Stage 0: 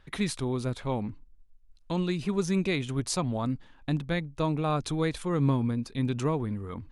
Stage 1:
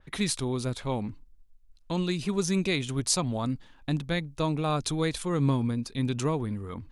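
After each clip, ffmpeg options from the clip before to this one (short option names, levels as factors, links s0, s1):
-af "adynamicequalizer=threshold=0.00398:dfrequency=3100:dqfactor=0.7:tfrequency=3100:tqfactor=0.7:attack=5:release=100:ratio=0.375:range=3.5:mode=boostabove:tftype=highshelf"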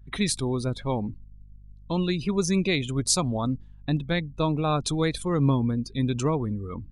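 -af "aeval=exprs='val(0)+0.00355*(sin(2*PI*50*n/s)+sin(2*PI*2*50*n/s)/2+sin(2*PI*3*50*n/s)/3+sin(2*PI*4*50*n/s)/4+sin(2*PI*5*50*n/s)/5)':c=same,afftdn=nr=19:nf=-41,volume=1.41"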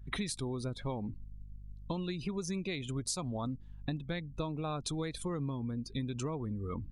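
-af "acompressor=threshold=0.0224:ratio=12"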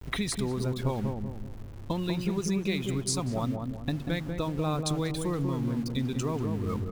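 -filter_complex "[0:a]aeval=exprs='val(0)*gte(abs(val(0)),0.00422)':c=same,asplit=2[s0][s1];[s1]adelay=191,lowpass=f=830:p=1,volume=0.668,asplit=2[s2][s3];[s3]adelay=191,lowpass=f=830:p=1,volume=0.46,asplit=2[s4][s5];[s5]adelay=191,lowpass=f=830:p=1,volume=0.46,asplit=2[s6][s7];[s7]adelay=191,lowpass=f=830:p=1,volume=0.46,asplit=2[s8][s9];[s9]adelay=191,lowpass=f=830:p=1,volume=0.46,asplit=2[s10][s11];[s11]adelay=191,lowpass=f=830:p=1,volume=0.46[s12];[s0][s2][s4][s6][s8][s10][s12]amix=inputs=7:normalize=0,volume=1.88"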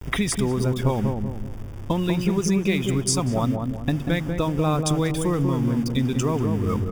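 -af "asuperstop=centerf=4100:order=4:qfactor=5.2,volume=2.37"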